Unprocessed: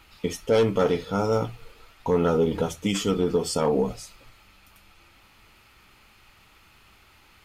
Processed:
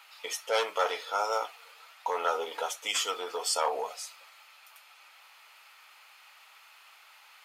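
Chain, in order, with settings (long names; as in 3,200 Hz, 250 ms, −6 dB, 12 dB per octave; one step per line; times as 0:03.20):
high-pass filter 670 Hz 24 dB per octave
level +1.5 dB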